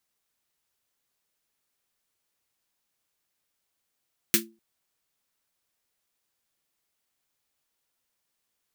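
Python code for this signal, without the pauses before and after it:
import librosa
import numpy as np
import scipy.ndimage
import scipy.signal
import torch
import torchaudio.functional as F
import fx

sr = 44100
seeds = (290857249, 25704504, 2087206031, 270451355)

y = fx.drum_snare(sr, seeds[0], length_s=0.25, hz=220.0, second_hz=340.0, noise_db=10.5, noise_from_hz=1600.0, decay_s=0.32, noise_decay_s=0.14)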